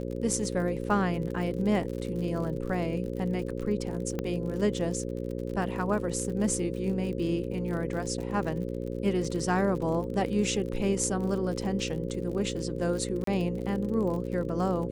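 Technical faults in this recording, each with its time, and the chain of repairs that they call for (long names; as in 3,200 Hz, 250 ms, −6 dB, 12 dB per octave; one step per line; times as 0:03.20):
mains buzz 60 Hz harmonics 9 −34 dBFS
surface crackle 53 per second −36 dBFS
0:04.19: click −18 dBFS
0:13.24–0:13.27: drop-out 33 ms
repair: click removal
hum removal 60 Hz, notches 9
repair the gap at 0:13.24, 33 ms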